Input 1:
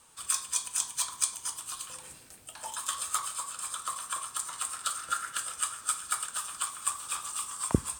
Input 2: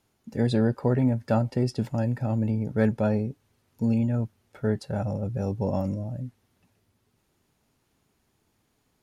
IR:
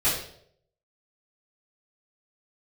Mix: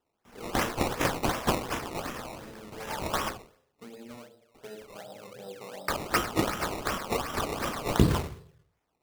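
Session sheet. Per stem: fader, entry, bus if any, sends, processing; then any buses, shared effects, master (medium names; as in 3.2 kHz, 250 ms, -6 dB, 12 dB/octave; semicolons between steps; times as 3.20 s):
+2.5 dB, 0.25 s, muted 3.29–5.88 s, send -9.5 dB, median filter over 3 samples; AM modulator 21 Hz, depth 25%
-9.0 dB, 0.00 s, send -11.5 dB, high-pass 430 Hz 12 dB/octave; compression 2.5:1, threshold -37 dBFS, peak gain reduction 10 dB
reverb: on, RT60 0.70 s, pre-delay 3 ms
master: decimation with a swept rate 19×, swing 100% 2.7 Hz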